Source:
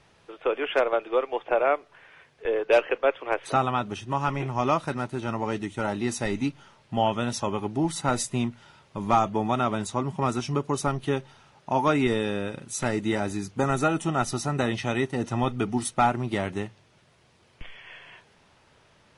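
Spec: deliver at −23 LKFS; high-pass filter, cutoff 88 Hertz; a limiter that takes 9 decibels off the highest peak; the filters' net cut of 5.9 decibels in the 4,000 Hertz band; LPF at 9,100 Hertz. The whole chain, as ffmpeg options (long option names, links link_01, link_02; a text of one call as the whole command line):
ffmpeg -i in.wav -af "highpass=88,lowpass=9100,equalizer=frequency=4000:width_type=o:gain=-8,volume=8dB,alimiter=limit=-10.5dB:level=0:latency=1" out.wav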